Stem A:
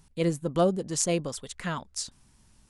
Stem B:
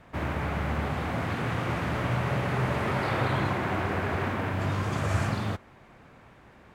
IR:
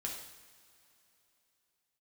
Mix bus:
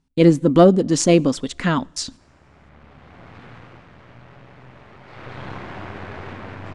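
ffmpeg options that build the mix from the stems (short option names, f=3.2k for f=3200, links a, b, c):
-filter_complex "[0:a]agate=range=-23dB:threshold=-47dB:ratio=16:detection=peak,equalizer=f=270:t=o:w=0.51:g=13,acontrast=89,volume=3dB,asplit=3[a][b][c];[b]volume=-24dB[d];[1:a]aeval=exprs='clip(val(0),-1,0.0158)':c=same,adelay=2050,volume=5dB,afade=t=out:st=3.44:d=0.4:silence=0.398107,afade=t=in:st=5.04:d=0.49:silence=0.251189[e];[c]apad=whole_len=387831[f];[e][f]sidechaincompress=threshold=-34dB:ratio=12:attack=16:release=1390[g];[2:a]atrim=start_sample=2205[h];[d][h]afir=irnorm=-1:irlink=0[i];[a][g][i]amix=inputs=3:normalize=0,lowpass=5.5k"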